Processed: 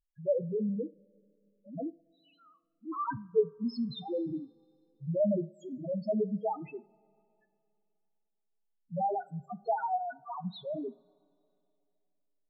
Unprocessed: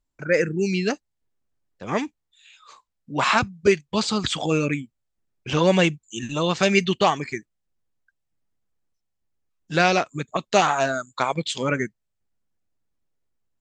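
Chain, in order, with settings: loudest bins only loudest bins 1; speed mistake 44.1 kHz file played as 48 kHz; two-slope reverb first 0.4 s, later 2.7 s, from -18 dB, DRR 16.5 dB; trim -2 dB

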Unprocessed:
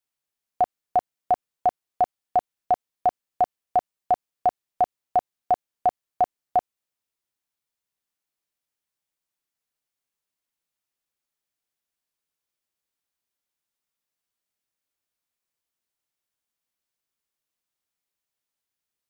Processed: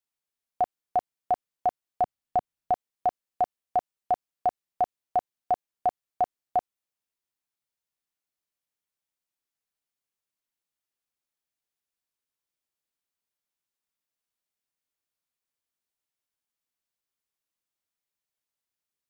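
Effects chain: 2.01–2.72 s: tone controls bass +7 dB, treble -1 dB; trim -4 dB

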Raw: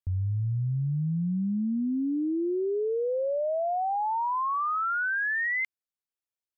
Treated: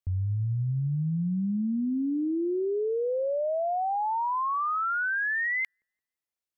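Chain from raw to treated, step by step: feedback echo behind a low-pass 171 ms, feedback 34%, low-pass 420 Hz, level -24 dB

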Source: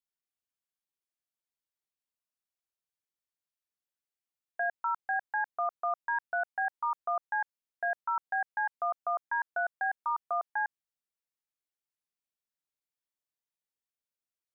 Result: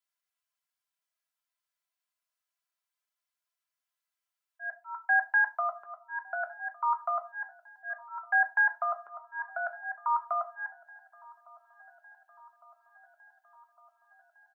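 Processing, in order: high-pass 690 Hz 24 dB/octave; peaking EQ 1.3 kHz +4.5 dB 1.6 oct; comb 3 ms, depth 78%; slow attack 331 ms; feedback echo behind a low-pass 1157 ms, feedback 68%, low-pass 1.5 kHz, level -23 dB; on a send at -5 dB: reverberation RT60 0.30 s, pre-delay 5 ms

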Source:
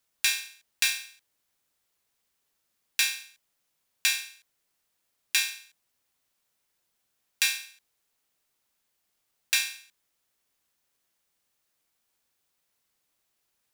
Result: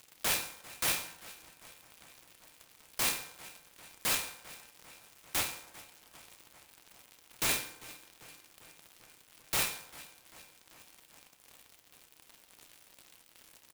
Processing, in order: 5.40–7.49 s: dead-time distortion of 0.075 ms; transient shaper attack +11 dB, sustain -9 dB; crackle 220 per s -44 dBFS; resonant high shelf 2.2 kHz +8 dB, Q 1.5; wavefolder -20 dBFS; doubling 32 ms -11 dB; filtered feedback delay 395 ms, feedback 71%, low-pass 3.8 kHz, level -16 dB; reverberation RT60 0.95 s, pre-delay 3 ms, DRR 3.5 dB; delay time shaken by noise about 6 kHz, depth 0.063 ms; trim -3.5 dB

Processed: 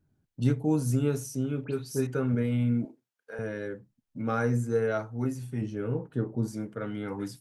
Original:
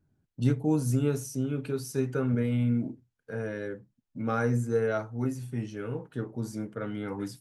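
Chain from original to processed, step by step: 1.64–2.07 s: phase dispersion highs, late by 81 ms, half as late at 2.9 kHz; 2.85–3.39 s: high-pass 500 Hz 12 dB/octave; 5.61–6.48 s: tilt shelf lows +5 dB

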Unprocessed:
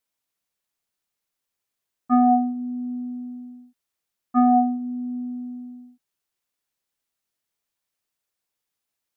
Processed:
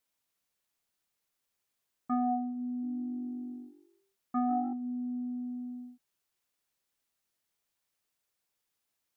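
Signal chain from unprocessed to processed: compression 2:1, threshold -39 dBFS, peak gain reduction 13.5 dB; 2.68–4.73 s: frequency-shifting echo 147 ms, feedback 37%, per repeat +48 Hz, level -15 dB

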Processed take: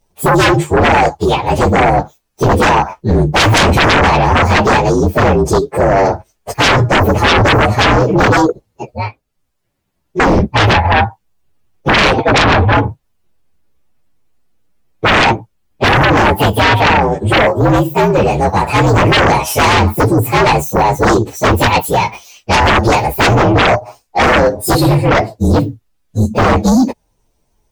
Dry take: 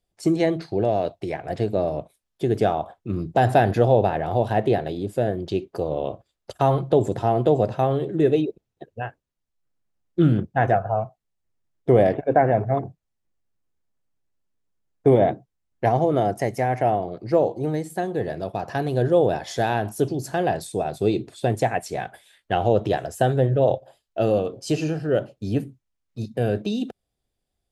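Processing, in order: frequency axis rescaled in octaves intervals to 120%; 8.88–10.20 s: compression 1.5:1, threshold -52 dBFS, peak gain reduction 10 dB; sine folder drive 18 dB, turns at -6 dBFS

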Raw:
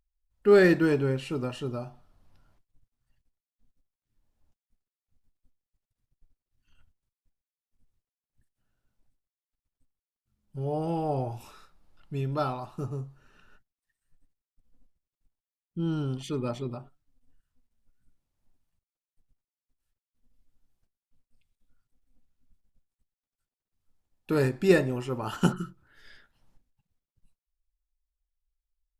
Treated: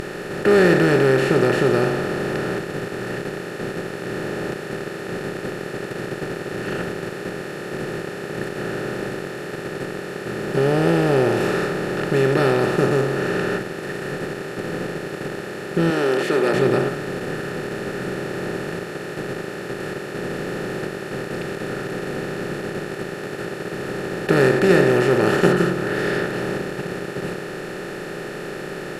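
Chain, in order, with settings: spectral levelling over time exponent 0.2; 15.90–16.54 s: high-pass 280 Hz 12 dB/octave

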